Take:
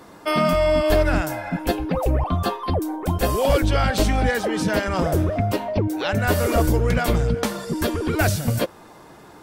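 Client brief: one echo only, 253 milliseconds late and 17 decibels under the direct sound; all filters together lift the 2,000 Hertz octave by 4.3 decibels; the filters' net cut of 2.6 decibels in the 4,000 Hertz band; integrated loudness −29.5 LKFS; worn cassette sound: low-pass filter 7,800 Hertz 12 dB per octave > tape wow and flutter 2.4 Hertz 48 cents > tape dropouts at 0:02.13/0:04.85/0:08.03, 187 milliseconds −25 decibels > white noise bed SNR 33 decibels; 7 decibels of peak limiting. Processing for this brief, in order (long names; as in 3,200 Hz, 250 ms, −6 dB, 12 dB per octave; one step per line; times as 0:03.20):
parametric band 2,000 Hz +7 dB
parametric band 4,000 Hz −6 dB
brickwall limiter −13.5 dBFS
low-pass filter 7,800 Hz 12 dB per octave
single-tap delay 253 ms −17 dB
tape wow and flutter 2.4 Hz 48 cents
tape dropouts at 0:02.13/0:04.85/0:08.03, 187 ms −25 dB
white noise bed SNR 33 dB
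level −5.5 dB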